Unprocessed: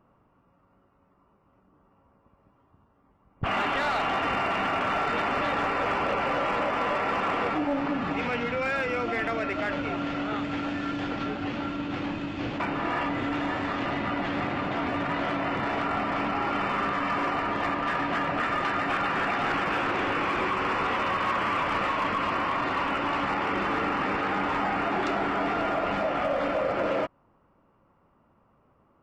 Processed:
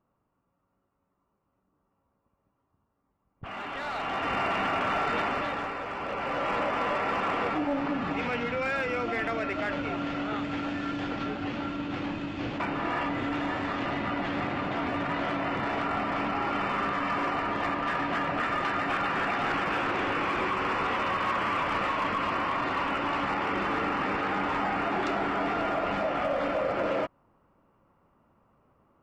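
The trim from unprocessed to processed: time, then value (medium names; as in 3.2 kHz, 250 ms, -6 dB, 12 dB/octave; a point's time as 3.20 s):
3.44 s -12.5 dB
4.41 s -1 dB
5.21 s -1 dB
5.88 s -9 dB
6.53 s -1.5 dB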